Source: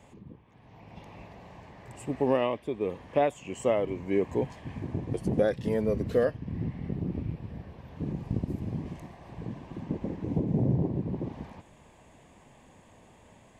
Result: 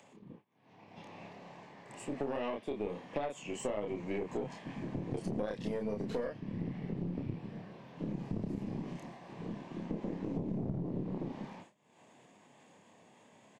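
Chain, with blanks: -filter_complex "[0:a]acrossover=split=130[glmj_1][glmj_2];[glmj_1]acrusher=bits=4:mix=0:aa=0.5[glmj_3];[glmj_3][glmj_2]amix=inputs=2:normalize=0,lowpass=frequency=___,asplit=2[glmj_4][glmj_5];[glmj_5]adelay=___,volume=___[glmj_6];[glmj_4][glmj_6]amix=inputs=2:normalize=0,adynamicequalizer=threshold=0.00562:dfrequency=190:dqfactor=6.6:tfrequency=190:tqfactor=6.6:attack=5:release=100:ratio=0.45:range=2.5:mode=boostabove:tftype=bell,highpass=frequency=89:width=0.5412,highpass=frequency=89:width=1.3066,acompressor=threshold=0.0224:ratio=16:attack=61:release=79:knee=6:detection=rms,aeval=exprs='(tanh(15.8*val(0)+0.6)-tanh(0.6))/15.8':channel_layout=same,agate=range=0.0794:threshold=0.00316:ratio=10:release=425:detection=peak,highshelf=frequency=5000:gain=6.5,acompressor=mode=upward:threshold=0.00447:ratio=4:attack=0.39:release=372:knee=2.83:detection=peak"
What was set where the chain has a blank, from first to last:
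6600, 29, 0.708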